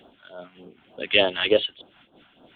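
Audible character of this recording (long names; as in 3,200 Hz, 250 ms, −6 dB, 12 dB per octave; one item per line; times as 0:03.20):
phaser sweep stages 2, 3.4 Hz, lowest notch 410–2,100 Hz
amplitude modulation by smooth noise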